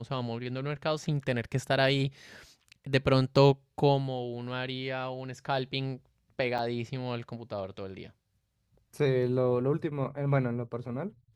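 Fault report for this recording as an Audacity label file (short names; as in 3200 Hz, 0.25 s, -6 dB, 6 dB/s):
6.580000	6.590000	gap 6.8 ms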